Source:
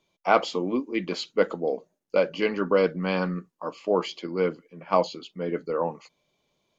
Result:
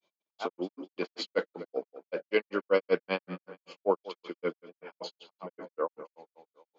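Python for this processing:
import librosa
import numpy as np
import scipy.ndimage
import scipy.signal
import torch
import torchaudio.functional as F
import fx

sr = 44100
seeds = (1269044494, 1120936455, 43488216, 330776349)

y = fx.echo_tape(x, sr, ms=205, feedback_pct=58, wet_db=-15.0, lp_hz=3900.0, drive_db=4.0, wow_cents=28)
y = fx.granulator(y, sr, seeds[0], grain_ms=116.0, per_s=5.2, spray_ms=100.0, spread_st=0)
y = fx.bandpass_edges(y, sr, low_hz=280.0, high_hz=5500.0)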